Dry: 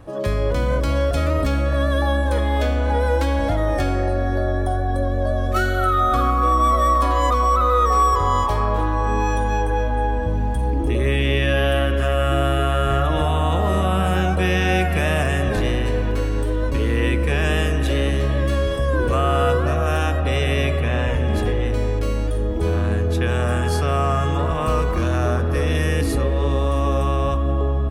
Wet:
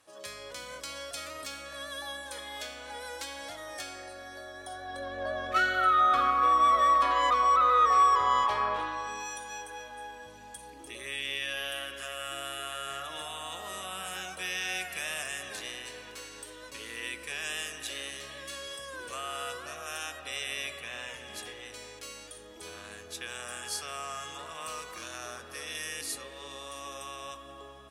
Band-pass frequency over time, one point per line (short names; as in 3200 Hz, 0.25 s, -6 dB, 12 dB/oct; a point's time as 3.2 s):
band-pass, Q 0.83
4.54 s 7600 Hz
5.26 s 2300 Hz
8.69 s 2300 Hz
9.29 s 7600 Hz